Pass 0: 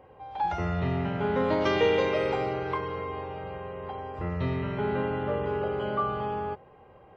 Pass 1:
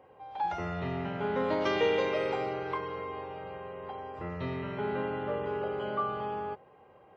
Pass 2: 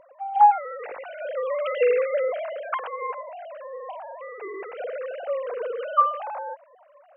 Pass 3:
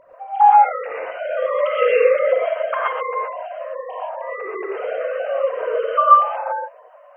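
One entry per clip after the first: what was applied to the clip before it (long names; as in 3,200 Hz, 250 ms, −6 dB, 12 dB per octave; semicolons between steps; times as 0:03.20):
high-pass filter 190 Hz 6 dB per octave; level −3 dB
three sine waves on the formant tracks; level +7 dB
reverb whose tail is shaped and stops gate 150 ms rising, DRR −6 dB; level +1.5 dB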